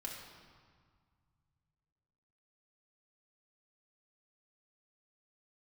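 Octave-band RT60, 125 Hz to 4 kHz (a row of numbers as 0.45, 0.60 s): 3.4, 2.4, 1.7, 2.0, 1.6, 1.3 s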